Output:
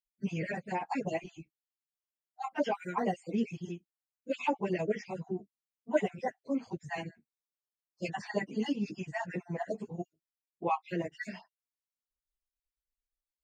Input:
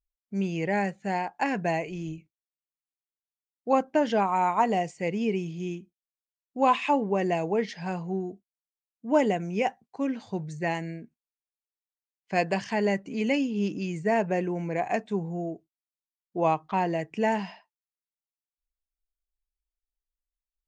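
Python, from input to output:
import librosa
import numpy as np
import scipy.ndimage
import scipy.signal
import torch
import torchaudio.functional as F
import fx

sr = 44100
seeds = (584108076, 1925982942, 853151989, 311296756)

y = fx.spec_dropout(x, sr, seeds[0], share_pct=49)
y = fx.stretch_vocoder_free(y, sr, factor=0.65)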